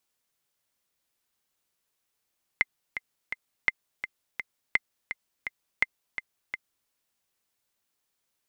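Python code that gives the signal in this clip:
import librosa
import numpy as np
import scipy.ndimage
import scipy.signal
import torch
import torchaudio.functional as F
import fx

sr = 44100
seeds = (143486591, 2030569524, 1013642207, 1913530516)

y = fx.click_track(sr, bpm=168, beats=3, bars=4, hz=2080.0, accent_db=10.5, level_db=-8.0)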